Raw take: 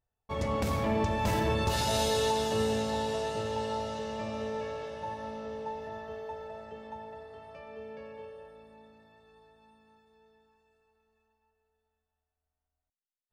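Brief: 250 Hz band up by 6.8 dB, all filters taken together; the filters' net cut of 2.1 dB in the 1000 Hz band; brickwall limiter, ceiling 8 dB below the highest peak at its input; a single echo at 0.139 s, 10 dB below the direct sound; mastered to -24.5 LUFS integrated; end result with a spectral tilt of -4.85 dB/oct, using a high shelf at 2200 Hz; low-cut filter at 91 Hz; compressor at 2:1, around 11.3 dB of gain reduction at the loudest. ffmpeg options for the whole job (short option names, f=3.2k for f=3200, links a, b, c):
-af "highpass=91,equalizer=f=250:t=o:g=8.5,equalizer=f=1k:t=o:g=-3.5,highshelf=f=2.2k:g=3.5,acompressor=threshold=-43dB:ratio=2,alimiter=level_in=10dB:limit=-24dB:level=0:latency=1,volume=-10dB,aecho=1:1:139:0.316,volume=18.5dB"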